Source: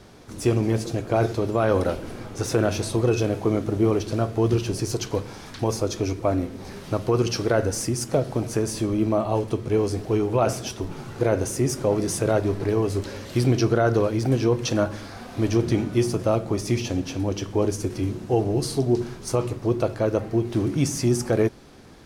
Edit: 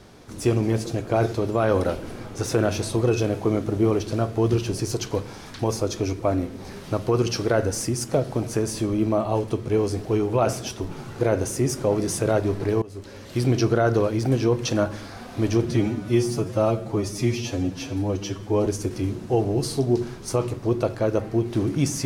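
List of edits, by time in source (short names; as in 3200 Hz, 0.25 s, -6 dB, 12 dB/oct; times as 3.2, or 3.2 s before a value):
12.82–13.57 fade in, from -20 dB
15.65–17.66 stretch 1.5×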